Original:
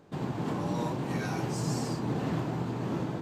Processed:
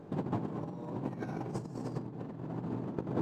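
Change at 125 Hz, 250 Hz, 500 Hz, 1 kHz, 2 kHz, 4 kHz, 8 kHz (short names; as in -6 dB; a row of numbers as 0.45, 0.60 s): -6.5, -5.0, -5.0, -7.5, -12.0, -17.0, -18.5 dB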